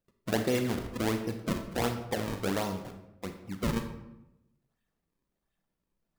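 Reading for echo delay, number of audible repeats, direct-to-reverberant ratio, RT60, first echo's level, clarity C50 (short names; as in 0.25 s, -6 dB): none, none, 6.0 dB, 0.90 s, none, 8.0 dB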